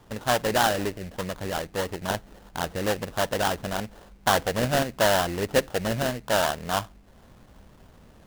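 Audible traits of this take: aliases and images of a low sample rate 2300 Hz, jitter 20%

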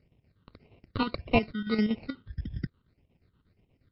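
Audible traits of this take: chopped level 8.4 Hz, depth 60%, duty 65%; aliases and images of a low sample rate 1700 Hz, jitter 0%; phasing stages 8, 1.7 Hz, lowest notch 680–1400 Hz; MP3

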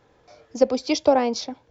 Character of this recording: noise floor -61 dBFS; spectral tilt -3.0 dB/oct

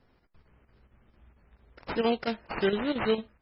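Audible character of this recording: aliases and images of a low sample rate 3500 Hz, jitter 20%; chopped level 4.4 Hz, depth 60%, duty 85%; MP3

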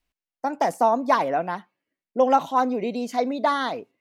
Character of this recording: noise floor -93 dBFS; spectral tilt -3.0 dB/oct

